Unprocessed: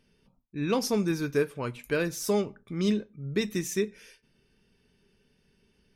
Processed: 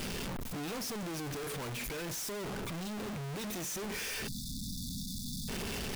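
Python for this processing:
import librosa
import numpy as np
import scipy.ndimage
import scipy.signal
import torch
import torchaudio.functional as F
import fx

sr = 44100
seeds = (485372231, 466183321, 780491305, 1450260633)

y = np.sign(x) * np.sqrt(np.mean(np.square(x)))
y = fx.spec_erase(y, sr, start_s=4.28, length_s=1.21, low_hz=280.0, high_hz=3400.0)
y = fx.rider(y, sr, range_db=10, speed_s=2.0)
y = F.gain(torch.from_numpy(y), -7.0).numpy()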